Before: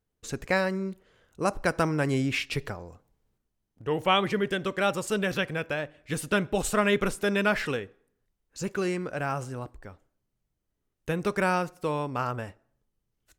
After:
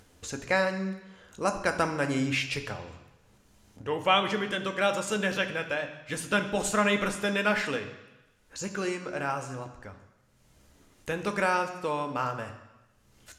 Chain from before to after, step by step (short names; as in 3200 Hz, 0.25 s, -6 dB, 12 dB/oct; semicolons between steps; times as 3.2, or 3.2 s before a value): LPF 11000 Hz 12 dB/oct; low shelf 310 Hz -8 dB; upward compressor, threshold -39 dBFS; on a send: reverb RT60 1.0 s, pre-delay 3 ms, DRR 5.5 dB